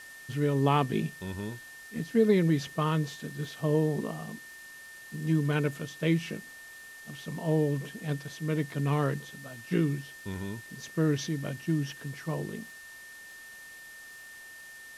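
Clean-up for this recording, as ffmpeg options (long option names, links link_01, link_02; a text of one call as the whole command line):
ffmpeg -i in.wav -af "adeclick=threshold=4,bandreject=frequency=1800:width=30,afwtdn=0.0025" out.wav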